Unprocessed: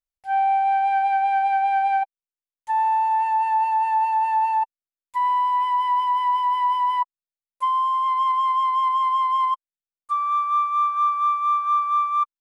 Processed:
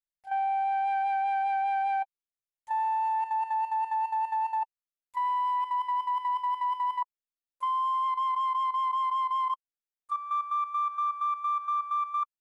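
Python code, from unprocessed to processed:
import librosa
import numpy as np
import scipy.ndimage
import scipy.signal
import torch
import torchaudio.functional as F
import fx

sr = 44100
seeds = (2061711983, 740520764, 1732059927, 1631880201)

y = fx.level_steps(x, sr, step_db=11)
y = F.gain(torch.from_numpy(y), -5.5).numpy()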